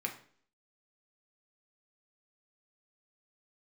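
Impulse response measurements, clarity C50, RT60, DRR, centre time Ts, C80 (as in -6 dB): 10.5 dB, 0.50 s, 1.5 dB, 14 ms, 15.0 dB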